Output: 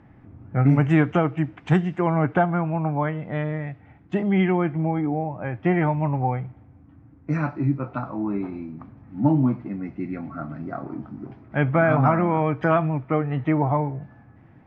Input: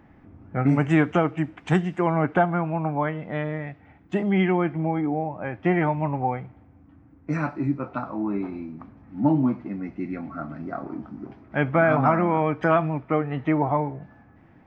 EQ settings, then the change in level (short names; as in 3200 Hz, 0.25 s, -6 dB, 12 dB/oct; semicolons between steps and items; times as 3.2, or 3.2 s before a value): air absorption 71 m; bell 120 Hz +7.5 dB 0.68 oct; 0.0 dB